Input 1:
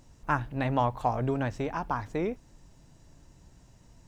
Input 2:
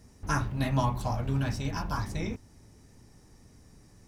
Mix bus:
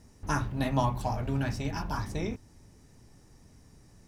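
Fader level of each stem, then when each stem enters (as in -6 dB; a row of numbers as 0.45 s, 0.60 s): -9.0 dB, -1.5 dB; 0.00 s, 0.00 s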